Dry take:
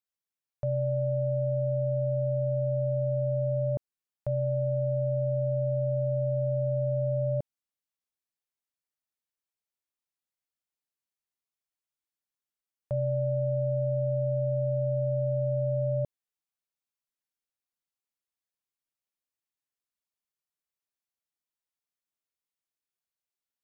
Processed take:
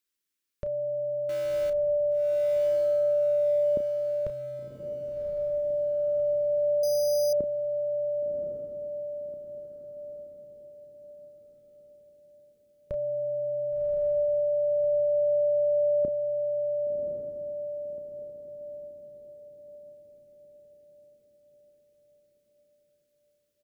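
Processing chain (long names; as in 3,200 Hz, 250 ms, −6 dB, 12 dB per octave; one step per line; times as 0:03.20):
0:01.29–0:01.70: mu-law and A-law mismatch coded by mu
phaser with its sweep stopped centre 310 Hz, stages 4
double-tracking delay 32 ms −10.5 dB
on a send: feedback delay with all-pass diffusion 1,112 ms, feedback 48%, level −3 dB
0:06.83–0:07.33: on the sum: bad sample-rate conversion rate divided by 8×, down filtered, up hold
level +8.5 dB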